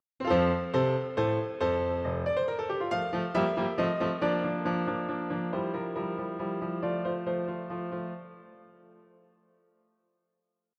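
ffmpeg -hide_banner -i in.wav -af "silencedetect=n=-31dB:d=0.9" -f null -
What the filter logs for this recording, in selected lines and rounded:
silence_start: 8.14
silence_end: 10.79 | silence_duration: 2.64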